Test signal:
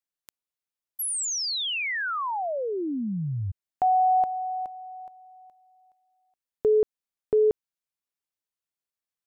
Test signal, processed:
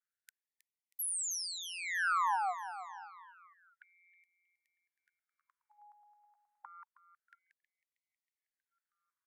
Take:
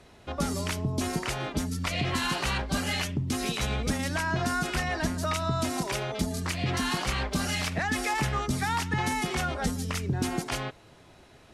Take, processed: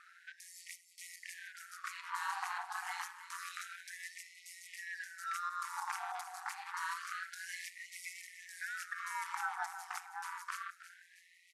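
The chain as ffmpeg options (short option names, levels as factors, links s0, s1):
-filter_complex "[0:a]bass=f=250:g=8,treble=f=4000:g=0,alimiter=limit=0.119:level=0:latency=1:release=497,acrossover=split=410|5200[s0][s1][s2];[s1]acompressor=threshold=0.00891:ratio=2.5:attack=4.1:release=857:knee=2.83:detection=peak[s3];[s0][s3][s2]amix=inputs=3:normalize=0,highshelf=f=2100:t=q:w=1.5:g=-11.5,asoftclip=type=tanh:threshold=0.119,aeval=exprs='val(0)*sin(2*PI*88*n/s)':c=same,asplit=2[s4][s5];[s5]aecho=0:1:318|636|954|1272|1590:0.251|0.131|0.0679|0.0353|0.0184[s6];[s4][s6]amix=inputs=2:normalize=0,aresample=32000,aresample=44100,afftfilt=real='re*gte(b*sr/1024,700*pow(1900/700,0.5+0.5*sin(2*PI*0.28*pts/sr)))':imag='im*gte(b*sr/1024,700*pow(1900/700,0.5+0.5*sin(2*PI*0.28*pts/sr)))':win_size=1024:overlap=0.75,volume=2.37"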